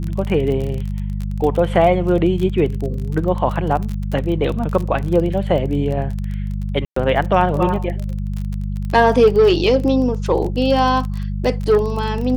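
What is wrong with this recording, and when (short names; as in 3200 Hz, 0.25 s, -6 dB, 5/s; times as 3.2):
crackle 29/s -23 dBFS
hum 50 Hz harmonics 4 -23 dBFS
6.85–6.96 gap 0.114 s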